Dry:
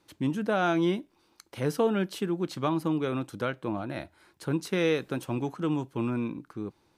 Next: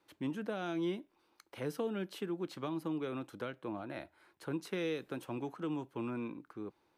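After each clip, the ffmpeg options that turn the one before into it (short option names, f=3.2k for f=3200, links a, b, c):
-filter_complex "[0:a]highshelf=f=9.8k:g=10,acrossover=split=370|3000[a][b][c];[b]acompressor=threshold=-36dB:ratio=6[d];[a][d][c]amix=inputs=3:normalize=0,bass=f=250:g=-9,treble=f=4k:g=-11,volume=-4.5dB"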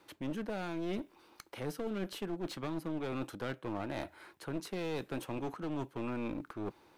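-af "areverse,acompressor=threshold=-44dB:ratio=6,areverse,aeval=exprs='clip(val(0),-1,0.00266)':c=same,volume=11dB"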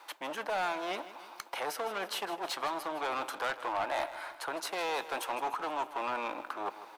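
-af "highpass=f=830:t=q:w=1.9,aeval=exprs='0.0562*(cos(1*acos(clip(val(0)/0.0562,-1,1)))-cos(1*PI/2))+0.01*(cos(5*acos(clip(val(0)/0.0562,-1,1)))-cos(5*PI/2))':c=same,aecho=1:1:157|314|471|628|785:0.188|0.102|0.0549|0.0297|0.016,volume=3.5dB"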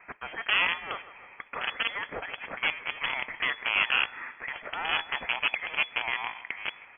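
-filter_complex "[0:a]acrossover=split=200|1200[a][b][c];[b]acrusher=bits=4:mix=0:aa=0.000001[d];[a][d][c]amix=inputs=3:normalize=0,lowpass=f=2.9k:t=q:w=0.5098,lowpass=f=2.9k:t=q:w=0.6013,lowpass=f=2.9k:t=q:w=0.9,lowpass=f=2.9k:t=q:w=2.563,afreqshift=-3400,volume=7.5dB"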